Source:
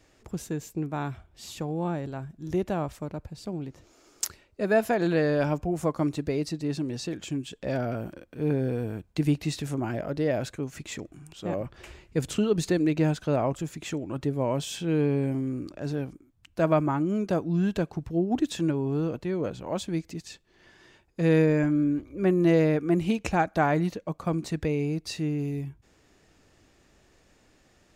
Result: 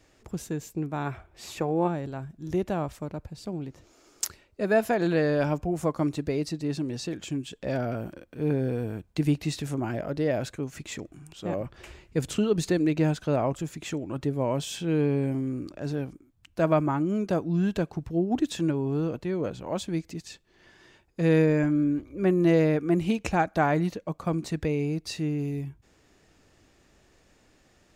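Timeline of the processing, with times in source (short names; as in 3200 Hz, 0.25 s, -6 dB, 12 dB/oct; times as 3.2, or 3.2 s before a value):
1.06–1.87 spectral gain 310–2700 Hz +7 dB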